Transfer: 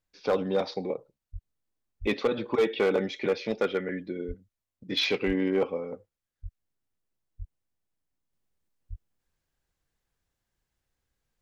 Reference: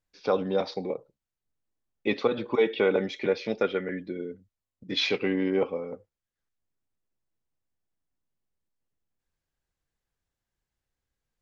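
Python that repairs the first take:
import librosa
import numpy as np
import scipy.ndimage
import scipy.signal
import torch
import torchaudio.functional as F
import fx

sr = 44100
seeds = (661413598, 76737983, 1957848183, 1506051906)

y = fx.fix_declip(x, sr, threshold_db=-18.0)
y = fx.fix_deplosive(y, sr, at_s=(1.32, 2.0, 4.27, 5.26, 6.42, 7.38, 8.89))
y = fx.gain(y, sr, db=fx.steps((0.0, 0.0), (8.33, -4.0)))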